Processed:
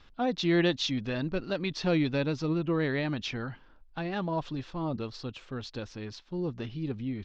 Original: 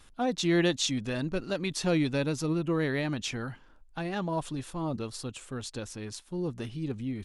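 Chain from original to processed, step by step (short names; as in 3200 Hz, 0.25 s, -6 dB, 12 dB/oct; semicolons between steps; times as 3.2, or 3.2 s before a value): inverse Chebyshev low-pass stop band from 9100 Hz, stop band 40 dB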